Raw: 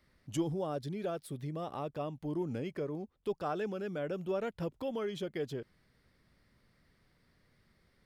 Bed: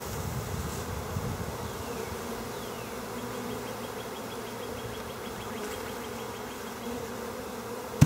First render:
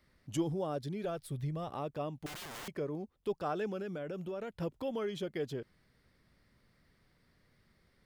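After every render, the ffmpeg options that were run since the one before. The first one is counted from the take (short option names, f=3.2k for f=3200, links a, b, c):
-filter_complex "[0:a]asplit=3[a][b][c];[a]afade=t=out:st=1.04:d=0.02[d];[b]asubboost=boost=12:cutoff=100,afade=t=in:st=1.04:d=0.02,afade=t=out:st=1.69:d=0.02[e];[c]afade=t=in:st=1.69:d=0.02[f];[d][e][f]amix=inputs=3:normalize=0,asettb=1/sr,asplit=3[g][h][i];[g]atrim=end=2.264[j];[h]atrim=start=2.26:end=2.68,asetpts=PTS-STARTPTS,afade=t=in:d=0.004:c=qsin,afade=t=out:st=0.416:d=0.004:c=qsin,aeval=exprs='(mod(106*val(0)+1,2)-1)/106':c=same[k];[i]atrim=start=2.676[l];[j][k]acrossfade=d=0.004:c1=hsin:c2=qsin[m];[m][l]acrossfade=d=0.004:c1=qsin:c2=hsin,asettb=1/sr,asplit=3[n][o][p];[n]atrim=end=3.824[q];[o]atrim=start=3.82:end=4.61,asetpts=PTS-STARTPTS,afade=t=in:d=0.004:c=qsin,afade=t=out:st=0.786:d=0.004:c=qsin,acompressor=threshold=-36dB:ratio=6:attack=3.2:release=140:knee=1:detection=peak[r];[p]atrim=start=4.606[s];[q][r]acrossfade=d=0.004:c1=hsin:c2=qsin[t];[t][s]acrossfade=d=0.004:c1=qsin:c2=hsin"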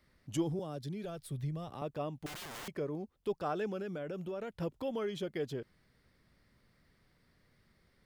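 -filter_complex "[0:a]asettb=1/sr,asplit=3[a][b][c];[a]atrim=end=0.594[d];[b]atrim=start=0.59:end=1.82,asetpts=PTS-STARTPTS,afade=t=in:d=0.004:c=qsin,afade=t=out:st=1.226:d=0.004:c=qsin,acrossover=split=240|3000[e][f][g];[f]acompressor=threshold=-52dB:ratio=1.5:attack=3.2:release=140:knee=2.83:detection=peak[h];[e][h][g]amix=inputs=3:normalize=0[i];[c]atrim=start=1.816[j];[d][i]acrossfade=d=0.004:c1=hsin:c2=qsin[k];[k][j]acrossfade=d=0.004:c1=qsin:c2=hsin"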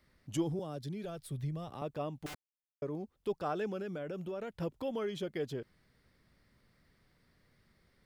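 -filter_complex "[0:a]asplit=3[a][b][c];[a]atrim=end=2.35,asetpts=PTS-STARTPTS,afade=t=out:st=2.346:d=0.004:c=hsin[d];[b]atrim=start=2.35:end=2.82,asetpts=PTS-STARTPTS,volume=0[e];[c]atrim=start=2.82,asetpts=PTS-STARTPTS,afade=t=in:d=0.004:c=hsin[f];[d][e][f]concat=n=3:v=0:a=1"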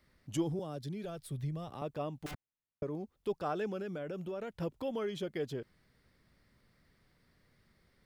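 -filter_complex "[0:a]asettb=1/sr,asplit=3[a][b][c];[a]atrim=end=2.314[d];[b]atrim=start=2.31:end=2.83,asetpts=PTS-STARTPTS,afade=t=in:d=0.004:c=qsin,afade=t=out:st=0.516:d=0.004:c=qsin,bass=f=250:g=10,treble=f=4k:g=-13[e];[c]atrim=start=2.826[f];[d][e]acrossfade=d=0.004:c1=hsin:c2=qsin[g];[g][f]acrossfade=d=0.004:c1=qsin:c2=hsin"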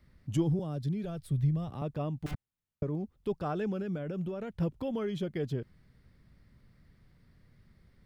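-af "bass=f=250:g=11,treble=f=4k:g=-3"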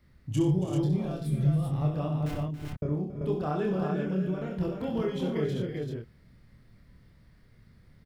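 -filter_complex "[0:a]asplit=2[a][b];[b]adelay=27,volume=-3dB[c];[a][c]amix=inputs=2:normalize=0,aecho=1:1:65|117|277|328|336|388:0.447|0.188|0.224|0.224|0.251|0.668"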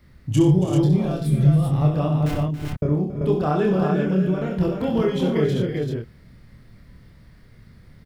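-af "volume=9dB"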